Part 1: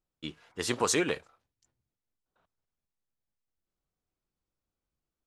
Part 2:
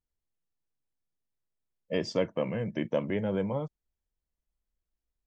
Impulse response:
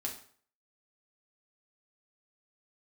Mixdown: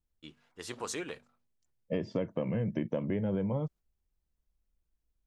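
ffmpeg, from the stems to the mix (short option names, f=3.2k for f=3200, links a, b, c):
-filter_complex "[0:a]bandreject=f=48.27:t=h:w=4,bandreject=f=96.54:t=h:w=4,bandreject=f=144.81:t=h:w=4,bandreject=f=193.08:t=h:w=4,bandreject=f=241.35:t=h:w=4,volume=0.5dB[a];[1:a]acrossover=split=3400[b][c];[c]acompressor=threshold=-57dB:ratio=4:attack=1:release=60[d];[b][d]amix=inputs=2:normalize=0,lowshelf=f=390:g=9.5,volume=-2.5dB,asplit=2[e][f];[f]apad=whole_len=232227[g];[a][g]sidechaingate=range=-11dB:threshold=-49dB:ratio=16:detection=peak[h];[h][e]amix=inputs=2:normalize=0,acompressor=threshold=-28dB:ratio=6"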